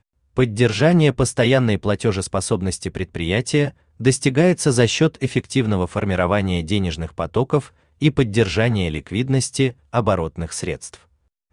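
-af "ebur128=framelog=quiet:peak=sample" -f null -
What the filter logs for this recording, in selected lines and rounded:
Integrated loudness:
  I:         -19.8 LUFS
  Threshold: -30.0 LUFS
Loudness range:
  LRA:         2.2 LU
  Threshold: -40.0 LUFS
  LRA low:   -21.1 LUFS
  LRA high:  -18.9 LUFS
Sample peak:
  Peak:       -3.2 dBFS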